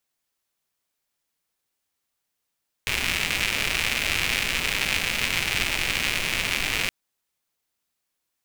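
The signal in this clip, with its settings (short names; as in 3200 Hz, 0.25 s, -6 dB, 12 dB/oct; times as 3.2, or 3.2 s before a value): rain from filtered ticks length 4.02 s, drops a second 190, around 2400 Hz, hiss -6.5 dB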